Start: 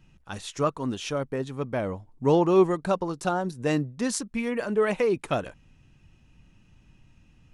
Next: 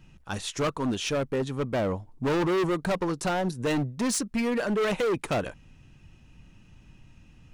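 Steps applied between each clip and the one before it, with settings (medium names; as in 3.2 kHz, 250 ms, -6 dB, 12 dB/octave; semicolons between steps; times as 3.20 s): hard clipper -27 dBFS, distortion -5 dB; trim +4 dB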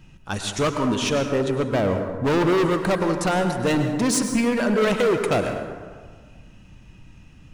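plate-style reverb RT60 1.6 s, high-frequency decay 0.45×, pre-delay 90 ms, DRR 5.5 dB; trim +5 dB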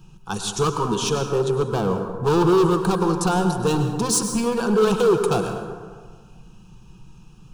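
static phaser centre 400 Hz, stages 8; trim +4 dB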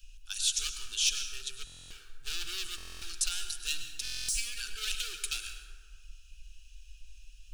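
inverse Chebyshev band-stop 100–1100 Hz, stop band 40 dB; buffer glitch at 1.65/2.76/4.03 s, samples 1024, times 10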